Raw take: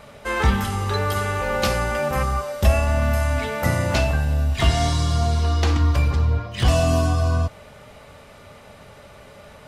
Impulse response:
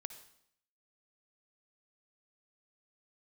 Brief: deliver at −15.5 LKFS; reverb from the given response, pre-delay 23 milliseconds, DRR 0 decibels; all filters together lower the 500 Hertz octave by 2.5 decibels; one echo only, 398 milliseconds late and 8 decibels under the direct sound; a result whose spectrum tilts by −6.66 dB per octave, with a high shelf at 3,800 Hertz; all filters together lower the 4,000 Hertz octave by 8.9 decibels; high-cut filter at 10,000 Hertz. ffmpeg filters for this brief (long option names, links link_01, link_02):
-filter_complex "[0:a]lowpass=10000,equalizer=frequency=500:width_type=o:gain=-3,highshelf=frequency=3800:gain=-6.5,equalizer=frequency=4000:width_type=o:gain=-8,aecho=1:1:398:0.398,asplit=2[link_01][link_02];[1:a]atrim=start_sample=2205,adelay=23[link_03];[link_02][link_03]afir=irnorm=-1:irlink=0,volume=3.5dB[link_04];[link_01][link_04]amix=inputs=2:normalize=0,volume=3dB"